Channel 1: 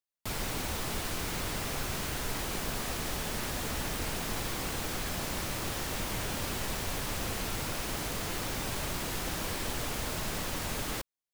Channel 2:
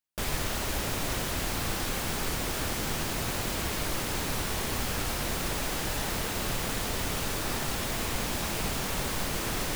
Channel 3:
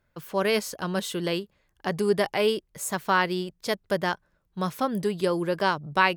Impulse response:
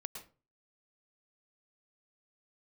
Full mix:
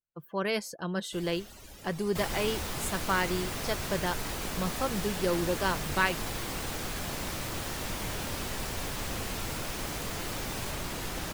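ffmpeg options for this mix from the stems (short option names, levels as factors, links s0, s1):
-filter_complex "[0:a]adelay=1900,volume=0.944[s0];[1:a]highshelf=f=2800:g=9,adelay=950,volume=0.112,asplit=2[s1][s2];[s2]volume=0.266[s3];[2:a]aecho=1:1:5.9:0.32,volume=0.531[s4];[3:a]atrim=start_sample=2205[s5];[s3][s5]afir=irnorm=-1:irlink=0[s6];[s0][s1][s4][s6]amix=inputs=4:normalize=0,afftdn=nr=25:nf=-49"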